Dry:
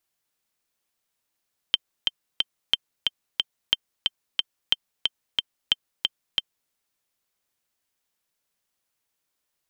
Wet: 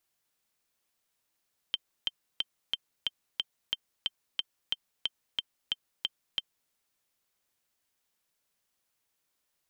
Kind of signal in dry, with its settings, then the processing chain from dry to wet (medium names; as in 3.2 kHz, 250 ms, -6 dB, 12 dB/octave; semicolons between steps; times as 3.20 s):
metronome 181 bpm, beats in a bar 3, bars 5, 3.13 kHz, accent 3 dB -5 dBFS
peak limiter -16.5 dBFS